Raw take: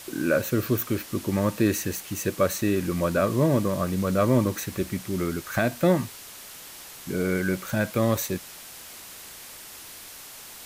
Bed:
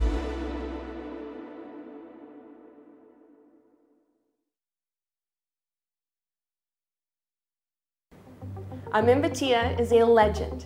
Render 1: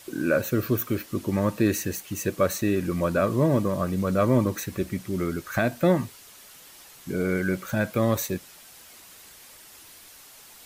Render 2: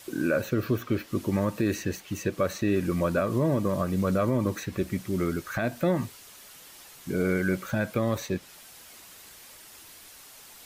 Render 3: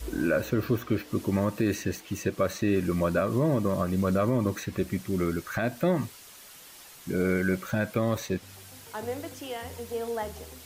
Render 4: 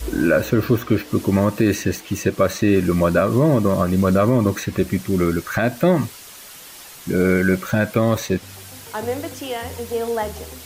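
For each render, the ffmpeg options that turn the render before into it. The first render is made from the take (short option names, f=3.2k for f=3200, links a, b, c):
-af "afftdn=nr=7:nf=-43"
-filter_complex "[0:a]acrossover=split=5300[a][b];[b]acompressor=threshold=-46dB:ratio=6[c];[a][c]amix=inputs=2:normalize=0,alimiter=limit=-15dB:level=0:latency=1:release=123"
-filter_complex "[1:a]volume=-13.5dB[a];[0:a][a]amix=inputs=2:normalize=0"
-af "volume=9dB"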